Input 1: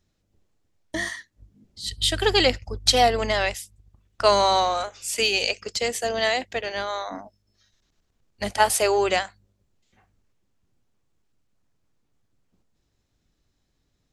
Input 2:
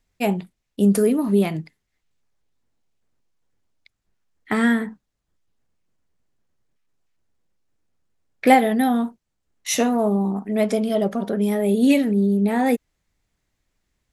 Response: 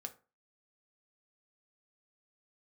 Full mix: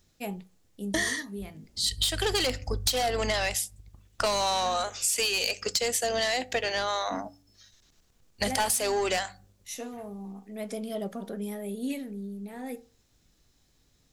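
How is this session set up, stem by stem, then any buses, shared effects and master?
+2.0 dB, 0.00 s, send -5.5 dB, de-hum 95.16 Hz, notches 3; soft clip -18 dBFS, distortion -10 dB
-15.0 dB, 0.00 s, send -4.5 dB, auto duck -16 dB, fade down 1.25 s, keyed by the first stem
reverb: on, RT60 0.35 s, pre-delay 3 ms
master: high shelf 4300 Hz +8.5 dB; compressor 12:1, threshold -24 dBFS, peak gain reduction 13.5 dB

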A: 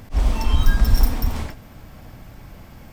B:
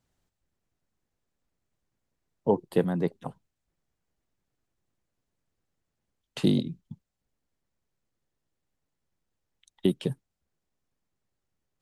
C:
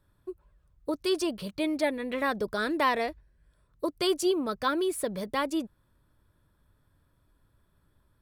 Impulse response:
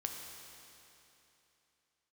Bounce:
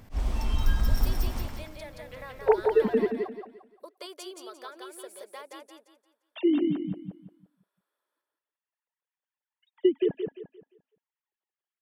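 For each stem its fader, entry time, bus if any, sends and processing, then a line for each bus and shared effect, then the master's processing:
-10.0 dB, 0.00 s, no send, echo send -4 dB, dry
+1.0 dB, 0.00 s, no send, echo send -4.5 dB, sine-wave speech
-10.5 dB, 0.00 s, no send, echo send -3 dB, HPF 440 Hz 24 dB/oct; compressor, threshold -29 dBFS, peak gain reduction 9 dB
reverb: off
echo: feedback echo 0.174 s, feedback 32%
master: dry

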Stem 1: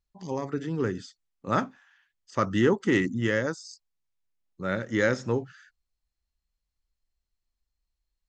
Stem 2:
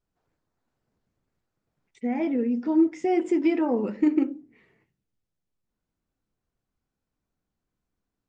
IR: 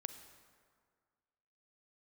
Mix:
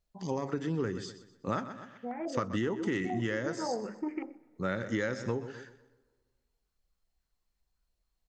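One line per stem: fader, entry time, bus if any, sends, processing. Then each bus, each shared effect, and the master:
+1.0 dB, 0.00 s, send -18.5 dB, echo send -15 dB, dry
-11.5 dB, 0.00 s, send -10.5 dB, echo send -23.5 dB, bell 270 Hz -11.5 dB 0.27 oct; stepped low-pass 7.1 Hz 620–2100 Hz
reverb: on, RT60 1.9 s, pre-delay 33 ms
echo: feedback echo 0.125 s, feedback 35%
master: compressor 10:1, threshold -28 dBFS, peak gain reduction 13.5 dB

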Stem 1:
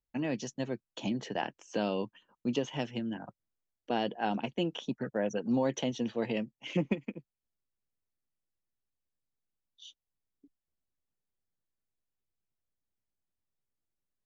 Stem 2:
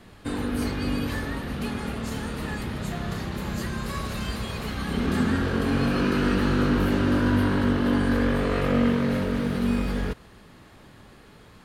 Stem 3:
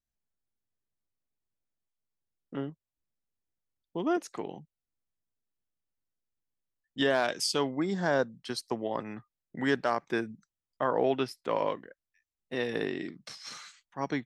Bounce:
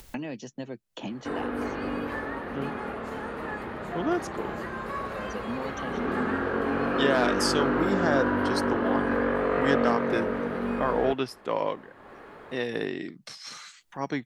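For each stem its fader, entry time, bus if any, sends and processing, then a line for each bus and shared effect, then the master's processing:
-4.5 dB, 0.00 s, no send, three-band squash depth 100%; auto duck -21 dB, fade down 1.15 s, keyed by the third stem
+3.0 dB, 1.00 s, no send, three-band isolator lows -17 dB, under 320 Hz, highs -20 dB, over 2000 Hz
+1.5 dB, 0.00 s, no send, dry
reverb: off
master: upward compressor, threshold -38 dBFS

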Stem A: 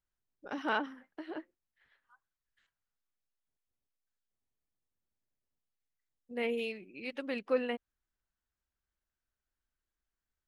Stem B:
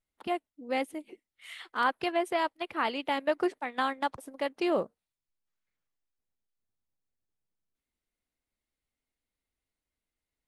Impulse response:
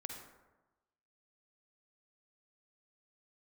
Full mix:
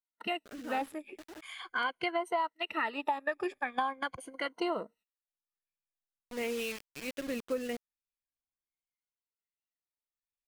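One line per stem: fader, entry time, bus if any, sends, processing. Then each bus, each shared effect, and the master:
+2.5 dB, 0.00 s, no send, bit-crush 7-bit; rotary speaker horn 0.7 Hz; auto duck -9 dB, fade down 0.65 s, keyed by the second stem
-3.5 dB, 0.00 s, no send, moving spectral ripple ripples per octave 1.9, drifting -0.43 Hz, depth 16 dB; gate -54 dBFS, range -18 dB; LFO bell 1.3 Hz 920–2700 Hz +11 dB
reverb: off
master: compressor 6:1, threshold -29 dBFS, peak gain reduction 13 dB

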